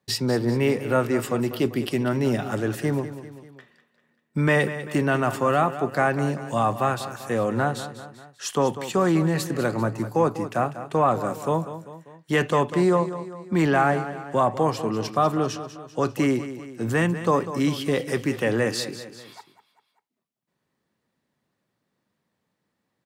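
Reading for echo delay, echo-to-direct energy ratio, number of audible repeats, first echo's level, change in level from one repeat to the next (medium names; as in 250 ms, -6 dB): 196 ms, -11.0 dB, 3, -12.5 dB, -5.5 dB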